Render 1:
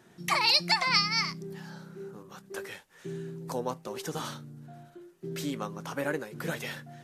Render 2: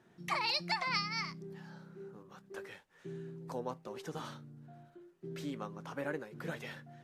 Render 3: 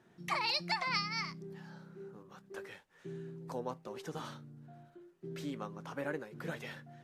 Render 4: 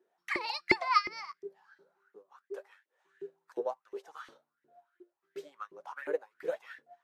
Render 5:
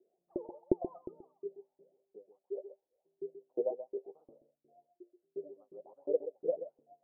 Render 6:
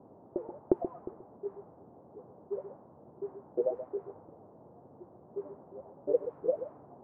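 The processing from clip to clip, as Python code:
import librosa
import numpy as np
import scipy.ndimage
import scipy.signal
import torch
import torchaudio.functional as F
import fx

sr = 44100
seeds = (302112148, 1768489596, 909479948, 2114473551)

y1 = fx.high_shelf(x, sr, hz=5200.0, db=-11.5)
y1 = y1 * librosa.db_to_amplitude(-6.5)
y2 = y1
y3 = fx.filter_lfo_highpass(y2, sr, shape='saw_up', hz=2.8, low_hz=350.0, high_hz=2100.0, q=7.7)
y3 = fx.upward_expand(y3, sr, threshold_db=-52.0, expansion=1.5)
y4 = scipy.signal.sosfilt(scipy.signal.butter(8, 660.0, 'lowpass', fs=sr, output='sos'), y3)
y4 = y4 + 10.0 ** (-11.0 / 20.0) * np.pad(y4, (int(130 * sr / 1000.0), 0))[:len(y4)]
y4 = y4 * librosa.db_to_amplitude(2.0)
y5 = fx.dmg_noise_band(y4, sr, seeds[0], low_hz=91.0, high_hz=930.0, level_db=-57.0)
y5 = fx.env_lowpass(y5, sr, base_hz=560.0, full_db=-29.0)
y5 = y5 * librosa.db_to_amplitude(3.0)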